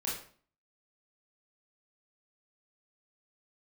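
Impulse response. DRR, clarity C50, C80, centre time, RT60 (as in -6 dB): -6.0 dB, 3.5 dB, 8.5 dB, 42 ms, 0.45 s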